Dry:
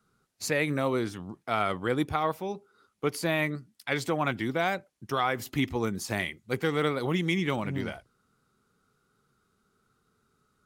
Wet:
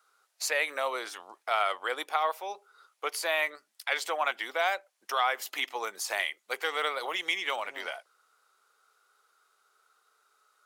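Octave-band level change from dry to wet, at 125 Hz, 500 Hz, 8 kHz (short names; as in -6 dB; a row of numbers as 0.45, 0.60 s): under -40 dB, -4.5 dB, +2.5 dB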